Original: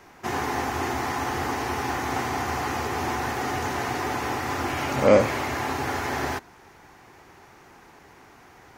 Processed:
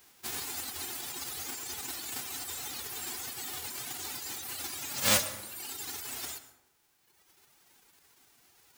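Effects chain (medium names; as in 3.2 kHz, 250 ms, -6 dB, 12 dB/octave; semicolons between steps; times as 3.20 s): formants flattened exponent 0.1; reverb removal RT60 2 s; plate-style reverb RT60 0.87 s, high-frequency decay 0.55×, pre-delay 85 ms, DRR 12 dB; trim -8.5 dB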